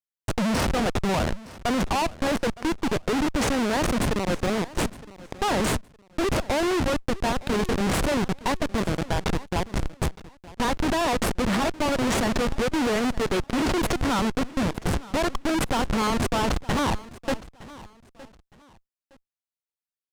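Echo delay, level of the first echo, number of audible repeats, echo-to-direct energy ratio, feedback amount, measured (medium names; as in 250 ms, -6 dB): 914 ms, -19.0 dB, 2, -18.5 dB, 27%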